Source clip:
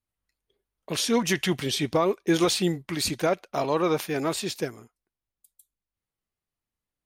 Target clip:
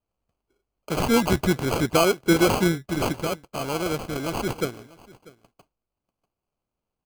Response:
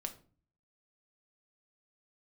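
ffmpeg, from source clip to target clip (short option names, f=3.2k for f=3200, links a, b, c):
-filter_complex "[0:a]asettb=1/sr,asplit=3[a][b][c];[a]atrim=end=3.124[d];[b]atrim=start=3.12:end=4.36,asetpts=PTS-STARTPTS,afade=t=in:d=0.004:c=qsin,afade=t=out:st=1.236:d=0.004:c=qsin,equalizer=f=620:w=0.42:g=-8[e];[c]atrim=start=4.356[f];[d][e]acrossfade=d=0.004:c1=hsin:c2=qsin[g];[g][f]acrossfade=d=0.004:c1=qsin:c2=hsin,acrusher=samples=24:mix=1:aa=0.000001,aecho=1:1:642:0.0794,volume=3.5dB"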